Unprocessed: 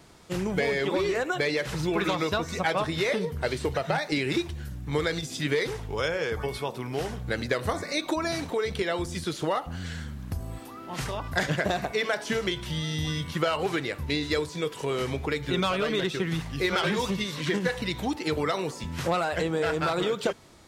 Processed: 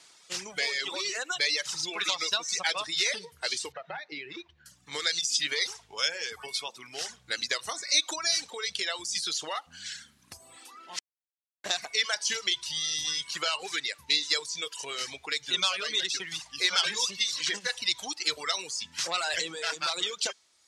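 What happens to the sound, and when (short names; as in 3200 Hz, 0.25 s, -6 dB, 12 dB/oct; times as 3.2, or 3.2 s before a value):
3.72–4.66 tape spacing loss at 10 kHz 37 dB
10.99–11.64 mute
19.15–19.74 fast leveller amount 100%
whole clip: weighting filter ITU-R 468; reverb removal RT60 1.3 s; dynamic EQ 5400 Hz, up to +8 dB, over -41 dBFS, Q 1.2; gain -6 dB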